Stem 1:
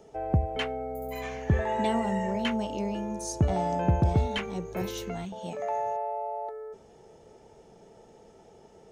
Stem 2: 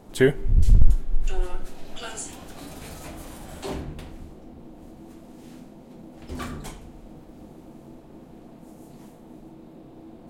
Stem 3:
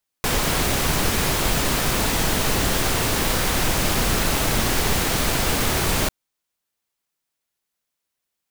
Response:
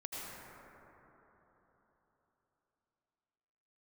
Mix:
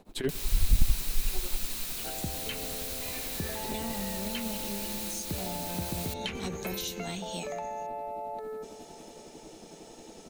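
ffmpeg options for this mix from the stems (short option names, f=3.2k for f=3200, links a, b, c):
-filter_complex "[0:a]highpass=110,adelay=1900,volume=1dB,asplit=2[a][b];[b]volume=-16.5dB[c];[1:a]asoftclip=type=hard:threshold=-9.5dB,tremolo=f=11:d=0.91,volume=-3.5dB[d];[2:a]adelay=50,volume=-15dB[e];[a][e]amix=inputs=2:normalize=0,crystalizer=i=4.5:c=0,acompressor=threshold=-33dB:ratio=2.5,volume=0dB[f];[3:a]atrim=start_sample=2205[g];[c][g]afir=irnorm=-1:irlink=0[h];[d][f][h]amix=inputs=3:normalize=0,acrossover=split=300[i][j];[j]acompressor=threshold=-34dB:ratio=6[k];[i][k]amix=inputs=2:normalize=0,equalizer=f=125:t=o:w=0.33:g=-10,equalizer=f=2.5k:t=o:w=0.33:g=5,equalizer=f=4k:t=o:w=0.33:g=7"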